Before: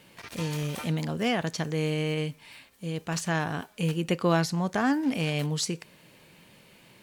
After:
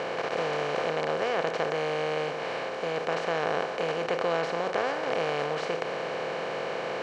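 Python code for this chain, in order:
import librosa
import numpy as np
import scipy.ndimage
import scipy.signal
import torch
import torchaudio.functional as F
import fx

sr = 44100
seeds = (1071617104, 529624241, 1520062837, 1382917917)

y = fx.bin_compress(x, sr, power=0.2)
y = scipy.signal.sosfilt(scipy.signal.butter(2, 2900.0, 'lowpass', fs=sr, output='sos'), y)
y = fx.low_shelf_res(y, sr, hz=350.0, db=-8.0, q=3.0)
y = y * librosa.db_to_amplitude(-8.5)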